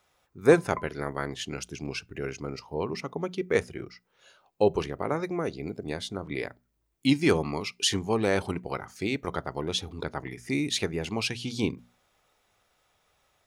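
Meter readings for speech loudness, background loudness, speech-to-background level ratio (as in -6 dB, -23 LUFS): -29.5 LUFS, -43.5 LUFS, 14.0 dB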